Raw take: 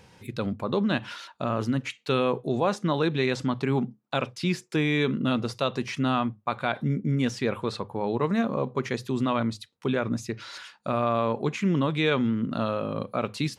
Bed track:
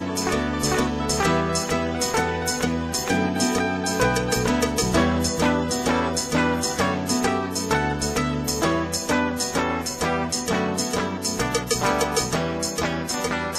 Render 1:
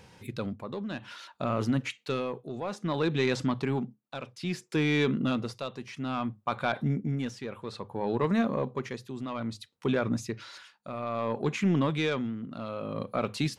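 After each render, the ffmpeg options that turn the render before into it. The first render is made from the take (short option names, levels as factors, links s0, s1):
-af "asoftclip=type=tanh:threshold=0.168,tremolo=f=0.6:d=0.69"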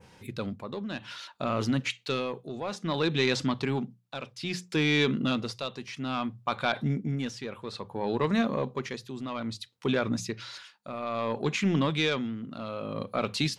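-af "adynamicequalizer=threshold=0.00355:dfrequency=4200:dqfactor=0.71:tfrequency=4200:tqfactor=0.71:attack=5:release=100:ratio=0.375:range=3.5:mode=boostabove:tftype=bell,bandreject=f=60:t=h:w=6,bandreject=f=120:t=h:w=6,bandreject=f=180:t=h:w=6"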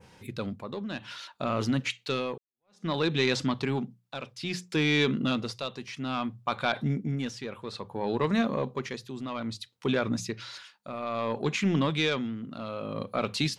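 -filter_complex "[0:a]asplit=2[s0][s1];[s0]atrim=end=2.38,asetpts=PTS-STARTPTS,afade=t=out:st=2.376:d=0.004:c=hsin[s2];[s1]atrim=start=2.38,asetpts=PTS-STARTPTS,afade=t=in:d=0.47:c=exp[s3];[s2][s3]concat=n=2:v=0:a=1"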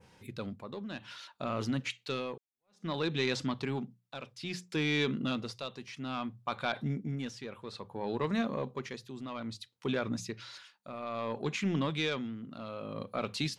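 -af "volume=0.531"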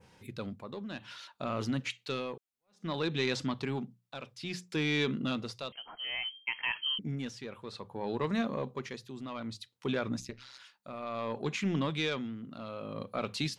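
-filter_complex "[0:a]asettb=1/sr,asplit=3[s0][s1][s2];[s0]atrim=end=5.724[s3];[s1]atrim=start=5.72:end=6.99,asetpts=PTS-STARTPTS,afade=t=in:d=0.004:c=qsin,afade=t=out:st=1.266:d=0.004:c=qsin,lowpass=f=2800:t=q:w=0.5098,lowpass=f=2800:t=q:w=0.6013,lowpass=f=2800:t=q:w=0.9,lowpass=f=2800:t=q:w=2.563,afreqshift=-3300[s4];[s2]atrim=start=6.986[s5];[s3][s4]acrossfade=d=0.004:c1=hsin:c2=qsin[s6];[s6][s5]acrossfade=d=0.004:c1=qsin:c2=hsin,asplit=3[s7][s8][s9];[s7]afade=t=out:st=10.19:d=0.02[s10];[s8]tremolo=f=130:d=0.889,afade=t=in:st=10.19:d=0.02,afade=t=out:st=10.59:d=0.02[s11];[s9]afade=t=in:st=10.59:d=0.02[s12];[s10][s11][s12]amix=inputs=3:normalize=0"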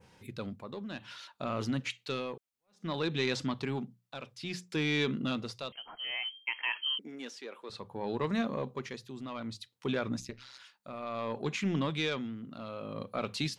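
-filter_complex "[0:a]asettb=1/sr,asplit=3[s0][s1][s2];[s0]atrim=end=6.114[s3];[s1]atrim=start=6.11:end=7.7,asetpts=PTS-STARTPTS,afade=t=in:d=0.004:c=qsin,afade=t=out:st=1.586:d=0.004:c=qsin,highpass=f=300:w=0.5412,highpass=f=300:w=1.3066[s4];[s2]atrim=start=7.696[s5];[s3][s4]acrossfade=d=0.004:c1=hsin:c2=qsin[s6];[s6][s5]acrossfade=d=0.004:c1=qsin:c2=hsin"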